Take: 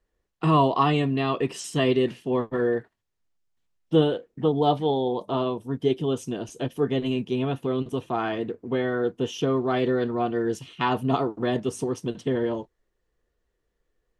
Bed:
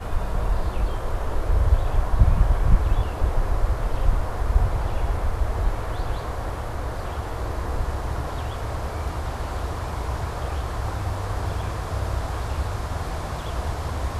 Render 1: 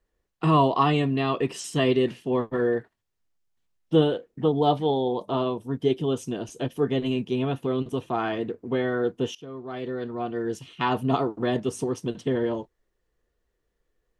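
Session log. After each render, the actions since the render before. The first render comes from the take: 9.35–10.99 fade in, from -21 dB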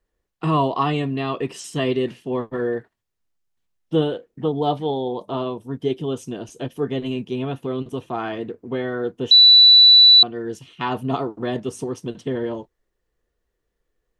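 9.31–10.23 bleep 3960 Hz -6.5 dBFS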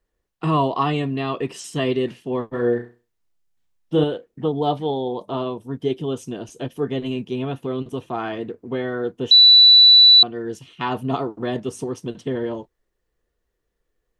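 2.48–4.04 flutter echo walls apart 5.7 m, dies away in 0.33 s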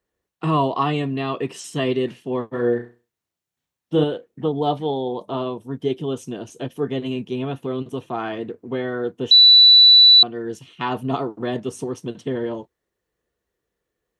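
HPF 83 Hz; notch 4900 Hz, Q 23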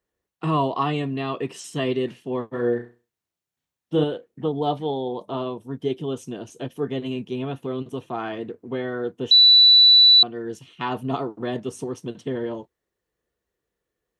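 gain -2.5 dB

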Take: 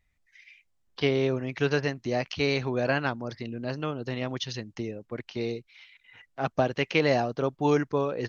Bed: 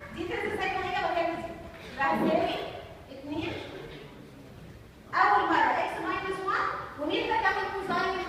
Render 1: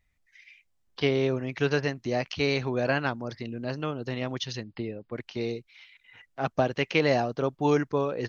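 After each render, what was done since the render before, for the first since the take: 4.63–5.14 brick-wall FIR low-pass 5100 Hz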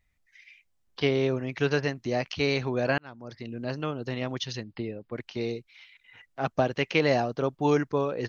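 2.98–3.61 fade in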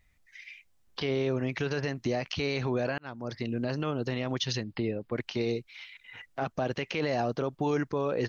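in parallel at -0.5 dB: compressor, threshold -33 dBFS, peak gain reduction 14 dB; on the sum: limiter -19.5 dBFS, peak gain reduction 11.5 dB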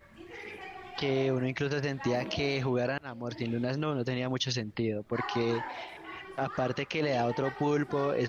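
add bed -14 dB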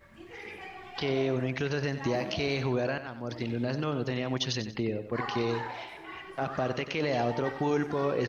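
feedback echo 93 ms, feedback 33%, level -11 dB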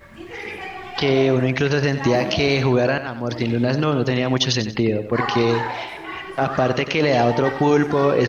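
gain +11.5 dB

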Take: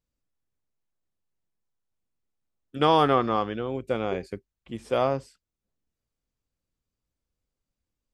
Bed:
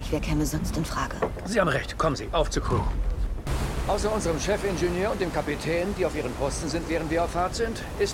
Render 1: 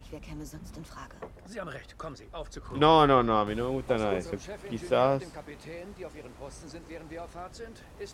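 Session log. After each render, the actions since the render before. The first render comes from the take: add bed -16 dB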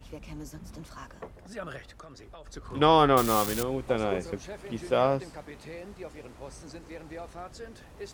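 1.91–2.47 compressor 12:1, threshold -42 dBFS; 3.17–3.63 switching spikes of -19 dBFS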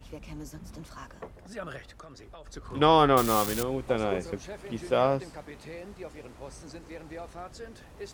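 nothing audible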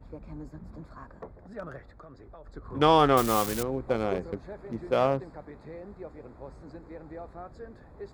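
Wiener smoothing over 15 samples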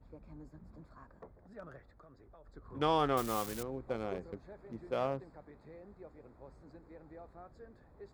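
gain -10 dB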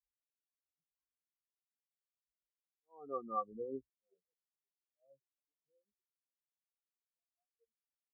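auto swell 0.768 s; spectral expander 4:1

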